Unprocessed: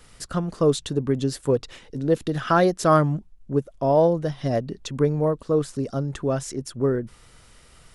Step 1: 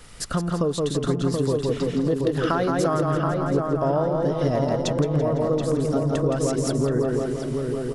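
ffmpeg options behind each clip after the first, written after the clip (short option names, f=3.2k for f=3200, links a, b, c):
-filter_complex "[0:a]asplit=2[a][b];[b]aecho=0:1:168|336|504|672|840:0.631|0.259|0.106|0.0435|0.0178[c];[a][c]amix=inputs=2:normalize=0,acompressor=threshold=-25dB:ratio=10,asplit=2[d][e];[e]adelay=728,lowpass=f=1.8k:p=1,volume=-3.5dB,asplit=2[f][g];[g]adelay=728,lowpass=f=1.8k:p=1,volume=0.48,asplit=2[h][i];[i]adelay=728,lowpass=f=1.8k:p=1,volume=0.48,asplit=2[j][k];[k]adelay=728,lowpass=f=1.8k:p=1,volume=0.48,asplit=2[l][m];[m]adelay=728,lowpass=f=1.8k:p=1,volume=0.48,asplit=2[n][o];[o]adelay=728,lowpass=f=1.8k:p=1,volume=0.48[p];[f][h][j][l][n][p]amix=inputs=6:normalize=0[q];[d][q]amix=inputs=2:normalize=0,volume=5dB"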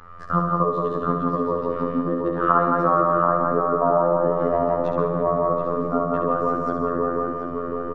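-af "lowpass=f=1.2k:t=q:w=5.7,afftfilt=real='hypot(re,im)*cos(PI*b)':imag='0':win_size=2048:overlap=0.75,aecho=1:1:68|136|204|272|340|408|476:0.501|0.281|0.157|0.088|0.0493|0.0276|0.0155,volume=1.5dB"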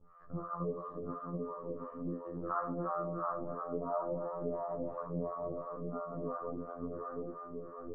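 -filter_complex "[0:a]lowpass=1.1k,flanger=delay=16.5:depth=6.4:speed=0.67,acrossover=split=590[a][b];[a]aeval=exprs='val(0)*(1-1/2+1/2*cos(2*PI*2.9*n/s))':c=same[c];[b]aeval=exprs='val(0)*(1-1/2-1/2*cos(2*PI*2.9*n/s))':c=same[d];[c][d]amix=inputs=2:normalize=0,volume=-8.5dB"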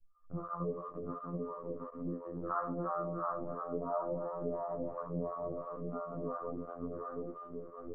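-af "anlmdn=0.0251"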